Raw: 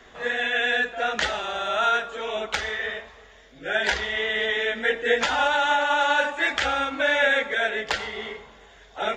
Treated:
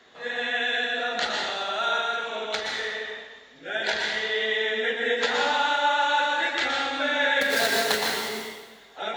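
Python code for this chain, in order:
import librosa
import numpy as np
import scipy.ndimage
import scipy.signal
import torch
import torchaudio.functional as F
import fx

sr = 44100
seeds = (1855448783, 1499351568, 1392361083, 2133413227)

y = fx.halfwave_hold(x, sr, at=(7.41, 8.29))
y = scipy.signal.sosfilt(scipy.signal.butter(2, 140.0, 'highpass', fs=sr, output='sos'), y)
y = fx.peak_eq(y, sr, hz=4100.0, db=9.5, octaves=0.32)
y = fx.rev_plate(y, sr, seeds[0], rt60_s=1.1, hf_ratio=1.0, predelay_ms=105, drr_db=-0.5)
y = y * 10.0 ** (-5.5 / 20.0)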